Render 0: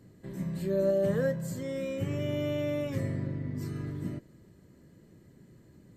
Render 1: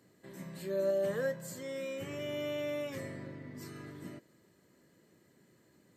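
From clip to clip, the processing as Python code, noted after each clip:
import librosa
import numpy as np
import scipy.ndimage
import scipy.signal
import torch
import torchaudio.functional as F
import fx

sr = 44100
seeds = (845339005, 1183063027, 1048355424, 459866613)

y = fx.highpass(x, sr, hz=680.0, slope=6)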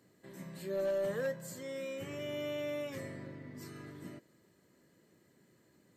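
y = np.clip(x, -10.0 ** (-27.5 / 20.0), 10.0 ** (-27.5 / 20.0))
y = y * 10.0 ** (-1.5 / 20.0)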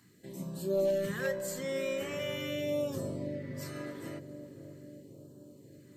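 y = fx.phaser_stages(x, sr, stages=2, low_hz=100.0, high_hz=2100.0, hz=0.42, feedback_pct=0)
y = fx.echo_bbd(y, sr, ms=536, stages=2048, feedback_pct=69, wet_db=-8.5)
y = y * 10.0 ** (7.5 / 20.0)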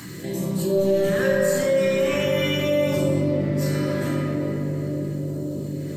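y = fx.room_shoebox(x, sr, seeds[0], volume_m3=130.0, walls='hard', distance_m=0.65)
y = fx.env_flatten(y, sr, amount_pct=50)
y = y * 10.0 ** (4.5 / 20.0)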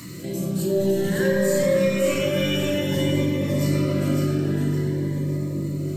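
y = fx.echo_feedback(x, sr, ms=558, feedback_pct=40, wet_db=-4.5)
y = fx.notch_cascade(y, sr, direction='rising', hz=0.53)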